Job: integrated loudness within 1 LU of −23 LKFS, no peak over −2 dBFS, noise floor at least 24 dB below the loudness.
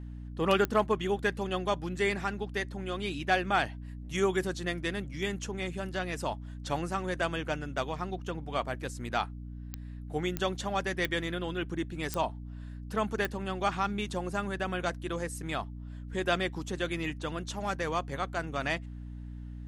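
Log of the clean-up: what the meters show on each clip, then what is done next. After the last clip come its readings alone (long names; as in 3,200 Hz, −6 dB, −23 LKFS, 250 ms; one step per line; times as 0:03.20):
number of clicks 6; mains hum 60 Hz; hum harmonics up to 300 Hz; level of the hum −39 dBFS; integrated loudness −32.5 LKFS; sample peak −14.0 dBFS; target loudness −23.0 LKFS
→ click removal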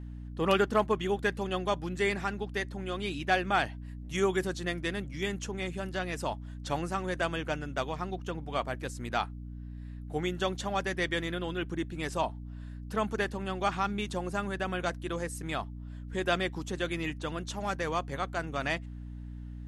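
number of clicks 0; mains hum 60 Hz; hum harmonics up to 300 Hz; level of the hum −39 dBFS
→ hum removal 60 Hz, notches 5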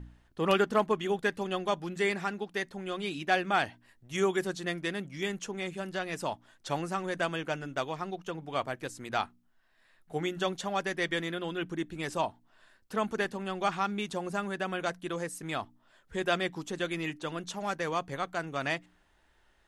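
mains hum none found; integrated loudness −33.0 LKFS; sample peak −14.0 dBFS; target loudness −23.0 LKFS
→ level +10 dB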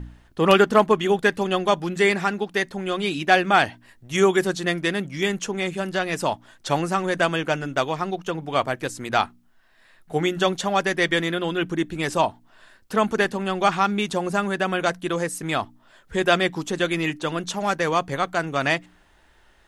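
integrated loudness −23.0 LKFS; sample peak −4.0 dBFS; background noise floor −57 dBFS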